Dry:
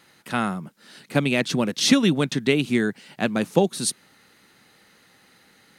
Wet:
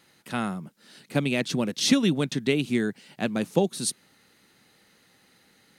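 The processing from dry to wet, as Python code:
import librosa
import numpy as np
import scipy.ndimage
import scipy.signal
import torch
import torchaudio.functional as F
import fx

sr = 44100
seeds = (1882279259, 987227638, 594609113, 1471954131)

y = fx.peak_eq(x, sr, hz=1300.0, db=-3.5, octaves=1.8)
y = y * 10.0 ** (-3.0 / 20.0)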